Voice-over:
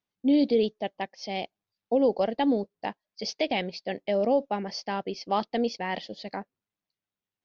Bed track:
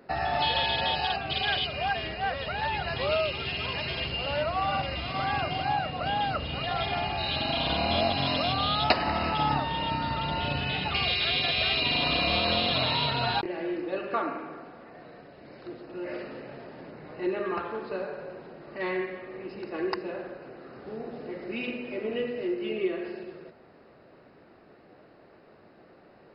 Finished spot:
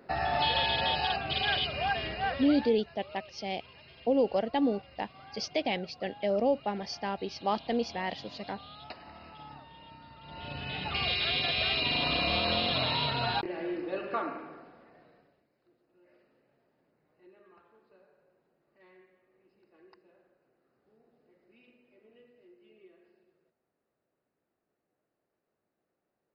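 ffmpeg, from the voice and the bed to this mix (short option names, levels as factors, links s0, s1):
-filter_complex "[0:a]adelay=2150,volume=0.708[s0];[1:a]volume=7.5,afade=t=out:st=2.26:d=0.51:silence=0.0944061,afade=t=in:st=10.21:d=0.88:silence=0.112202,afade=t=out:st=14.07:d=1.41:silence=0.0501187[s1];[s0][s1]amix=inputs=2:normalize=0"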